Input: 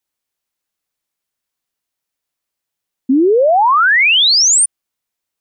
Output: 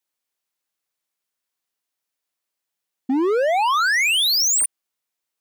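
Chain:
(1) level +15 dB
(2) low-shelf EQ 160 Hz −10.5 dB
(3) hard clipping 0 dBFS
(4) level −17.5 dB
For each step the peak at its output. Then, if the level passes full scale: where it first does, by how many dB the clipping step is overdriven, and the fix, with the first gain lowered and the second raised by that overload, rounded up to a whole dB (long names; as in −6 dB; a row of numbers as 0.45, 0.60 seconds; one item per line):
+7.5, +7.5, 0.0, −17.5 dBFS
step 1, 7.5 dB
step 1 +7 dB, step 4 −9.5 dB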